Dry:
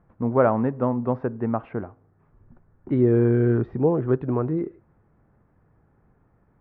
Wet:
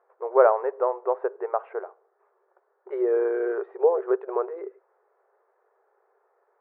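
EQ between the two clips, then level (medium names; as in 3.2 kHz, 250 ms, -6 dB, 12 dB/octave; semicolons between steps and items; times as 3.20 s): brick-wall FIR high-pass 370 Hz; low-pass 1.6 kHz 12 dB/octave; +2.5 dB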